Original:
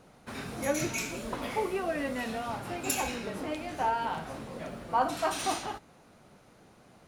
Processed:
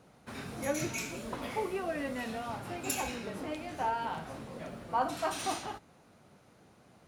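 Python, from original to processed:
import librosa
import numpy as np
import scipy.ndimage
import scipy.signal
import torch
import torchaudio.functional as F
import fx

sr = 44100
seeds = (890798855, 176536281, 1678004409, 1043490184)

y = scipy.signal.sosfilt(scipy.signal.butter(2, 68.0, 'highpass', fs=sr, output='sos'), x)
y = fx.low_shelf(y, sr, hz=87.0, db=6.5)
y = y * librosa.db_to_amplitude(-3.5)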